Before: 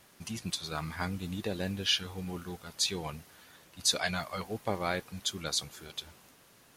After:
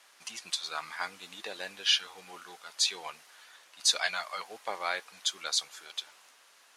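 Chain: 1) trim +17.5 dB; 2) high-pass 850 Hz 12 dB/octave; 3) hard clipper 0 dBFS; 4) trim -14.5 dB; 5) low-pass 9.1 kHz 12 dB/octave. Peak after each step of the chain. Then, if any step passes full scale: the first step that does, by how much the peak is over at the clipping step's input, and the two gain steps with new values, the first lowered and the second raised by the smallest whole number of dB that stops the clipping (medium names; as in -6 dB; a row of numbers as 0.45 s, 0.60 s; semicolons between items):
+4.5 dBFS, +4.0 dBFS, 0.0 dBFS, -14.5 dBFS, -13.5 dBFS; step 1, 4.0 dB; step 1 +13.5 dB, step 4 -10.5 dB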